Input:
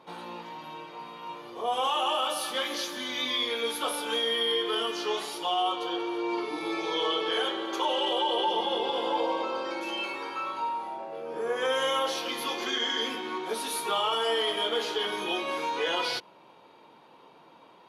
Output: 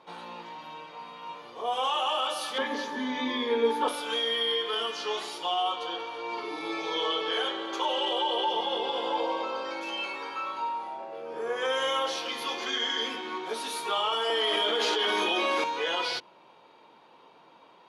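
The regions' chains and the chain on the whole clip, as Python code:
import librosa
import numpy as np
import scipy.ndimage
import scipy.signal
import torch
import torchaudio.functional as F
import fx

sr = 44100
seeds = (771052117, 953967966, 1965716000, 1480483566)

y = fx.chain(x, sr, fx.highpass(hz=110.0, slope=12),
    fx.high_shelf(hz=2200.0, db=-10.0),
    fx.small_body(hz=(250.0, 410.0, 890.0, 1700.0), ring_ms=50, db=16), at=(2.58, 3.88))
y = fx.chain(y, sr, fx.steep_highpass(hz=190.0, slope=36),
    fx.env_flatten(amount_pct=100), at=(14.3, 15.64))
y = scipy.signal.sosfilt(scipy.signal.butter(2, 8400.0, 'lowpass', fs=sr, output='sos'), y)
y = fx.low_shelf(y, sr, hz=410.0, db=-4.0)
y = fx.hum_notches(y, sr, base_hz=50, count=7)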